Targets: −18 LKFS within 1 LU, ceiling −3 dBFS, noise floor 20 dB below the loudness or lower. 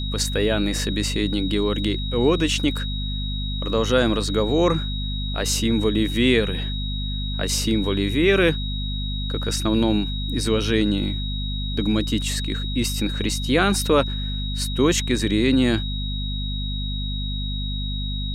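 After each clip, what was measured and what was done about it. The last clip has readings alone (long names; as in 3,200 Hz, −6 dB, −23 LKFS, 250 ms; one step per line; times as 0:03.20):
mains hum 50 Hz; hum harmonics up to 250 Hz; level of the hum −24 dBFS; interfering tone 3,800 Hz; level of the tone −31 dBFS; integrated loudness −22.5 LKFS; sample peak −5.5 dBFS; target loudness −18.0 LKFS
→ mains-hum notches 50/100/150/200/250 Hz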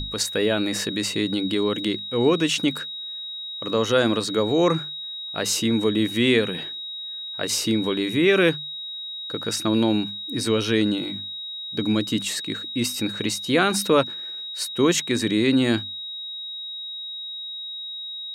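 mains hum none found; interfering tone 3,800 Hz; level of the tone −31 dBFS
→ notch filter 3,800 Hz, Q 30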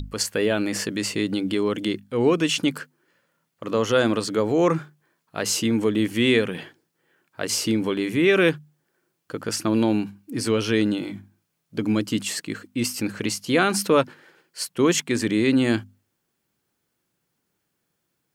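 interfering tone none found; integrated loudness −23.0 LKFS; sample peak −6.0 dBFS; target loudness −18.0 LKFS
→ level +5 dB
brickwall limiter −3 dBFS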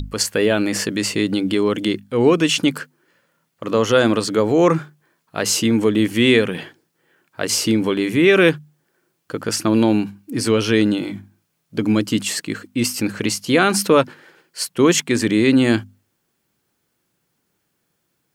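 integrated loudness −18.0 LKFS; sample peak −3.0 dBFS; background noise floor −71 dBFS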